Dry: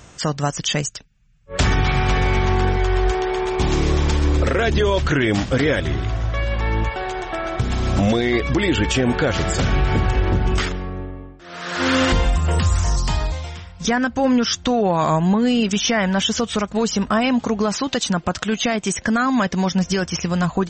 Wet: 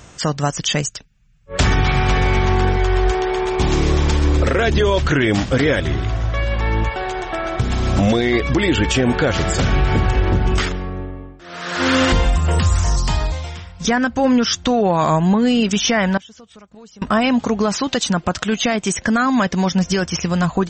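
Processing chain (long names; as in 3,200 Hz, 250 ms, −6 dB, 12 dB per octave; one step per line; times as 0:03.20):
0:16.17–0:17.02: gate with flip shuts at −19 dBFS, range −24 dB
level +2 dB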